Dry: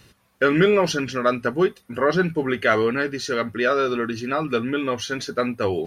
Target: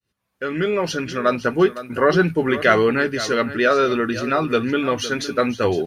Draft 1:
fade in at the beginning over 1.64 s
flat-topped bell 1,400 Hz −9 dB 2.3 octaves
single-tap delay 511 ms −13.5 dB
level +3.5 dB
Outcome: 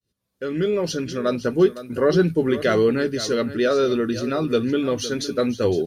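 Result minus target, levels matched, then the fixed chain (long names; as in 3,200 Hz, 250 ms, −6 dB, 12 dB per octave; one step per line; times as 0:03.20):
1,000 Hz band −7.0 dB
fade in at the beginning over 1.64 s
single-tap delay 511 ms −13.5 dB
level +3.5 dB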